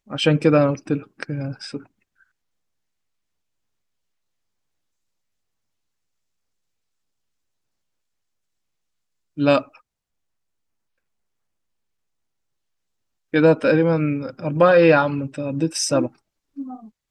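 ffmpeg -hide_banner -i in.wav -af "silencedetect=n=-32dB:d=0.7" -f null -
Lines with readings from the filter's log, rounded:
silence_start: 1.78
silence_end: 9.38 | silence_duration: 7.60
silence_start: 9.62
silence_end: 13.34 | silence_duration: 3.71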